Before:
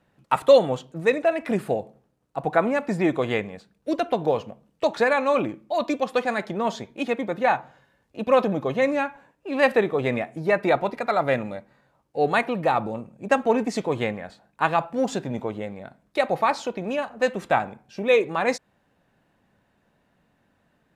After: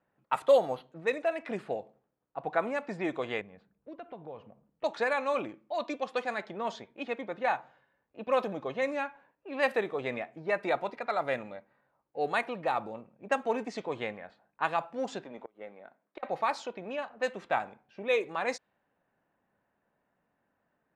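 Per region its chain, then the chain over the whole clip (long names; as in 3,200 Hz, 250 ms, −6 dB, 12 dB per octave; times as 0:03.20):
0:00.48–0:00.92: parametric band 730 Hz +5.5 dB 0.52 octaves + linearly interpolated sample-rate reduction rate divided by 6×
0:03.41–0:04.84: bass and treble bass +8 dB, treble −4 dB + downward compressor 2 to 1, threshold −40 dBFS + one half of a high-frequency compander decoder only
0:15.24–0:16.23: high-pass filter 260 Hz + tube saturation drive 15 dB, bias 0.3 + gate with flip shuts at −20 dBFS, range −27 dB
whole clip: low-shelf EQ 250 Hz −11.5 dB; low-pass that shuts in the quiet parts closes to 1,800 Hz, open at −18 dBFS; level −7 dB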